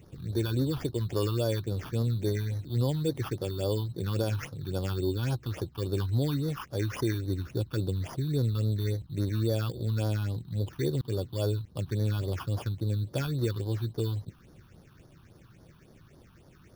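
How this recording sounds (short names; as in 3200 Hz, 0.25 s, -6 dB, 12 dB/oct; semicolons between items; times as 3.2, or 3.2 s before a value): aliases and images of a low sample rate 4000 Hz, jitter 0%; phasing stages 6, 3.6 Hz, lowest notch 520–2500 Hz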